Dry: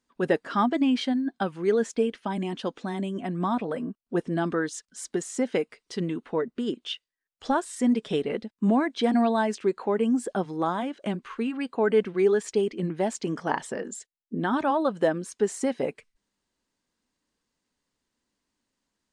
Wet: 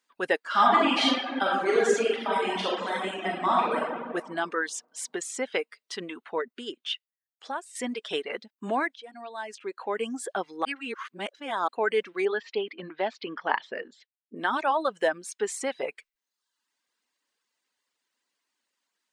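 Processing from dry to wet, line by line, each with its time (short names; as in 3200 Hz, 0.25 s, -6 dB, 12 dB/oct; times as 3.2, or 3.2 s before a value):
0.47–4.03 reverb throw, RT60 1.9 s, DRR -6.5 dB
6.43–7.75 fade out, to -12 dB
8.96–10.02 fade in quadratic, from -17.5 dB
10.65–11.68 reverse
12.25–14.36 steep low-pass 4400 Hz
whole clip: tone controls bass -10 dB, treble -12 dB; reverb removal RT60 0.77 s; tilt +4 dB/oct; gain +2 dB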